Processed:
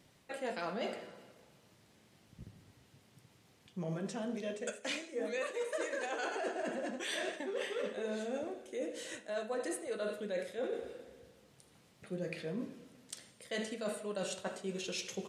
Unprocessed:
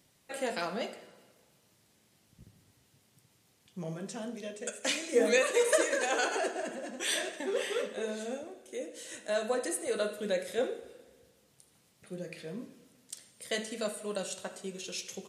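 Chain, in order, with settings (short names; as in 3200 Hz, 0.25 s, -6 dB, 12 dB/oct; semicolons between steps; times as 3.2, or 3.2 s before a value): high shelf 5700 Hz -11.5 dB; reverse; compressor 10:1, threshold -39 dBFS, peak gain reduction 18.5 dB; reverse; gain +4.5 dB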